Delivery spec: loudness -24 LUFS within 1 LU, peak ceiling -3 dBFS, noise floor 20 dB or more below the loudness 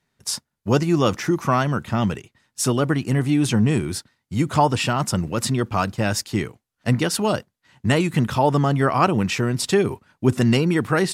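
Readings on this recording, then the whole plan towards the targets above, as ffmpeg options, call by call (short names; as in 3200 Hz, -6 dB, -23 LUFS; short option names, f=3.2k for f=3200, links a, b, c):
loudness -21.5 LUFS; peak -4.0 dBFS; loudness target -24.0 LUFS
-> -af "volume=-2.5dB"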